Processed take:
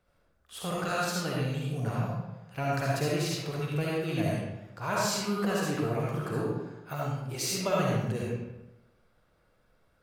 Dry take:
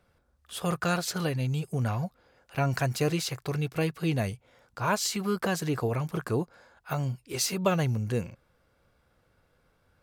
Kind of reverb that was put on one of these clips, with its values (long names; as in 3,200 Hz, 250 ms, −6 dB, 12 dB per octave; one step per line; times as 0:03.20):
comb and all-pass reverb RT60 0.99 s, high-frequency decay 0.7×, pre-delay 25 ms, DRR −5 dB
level −6.5 dB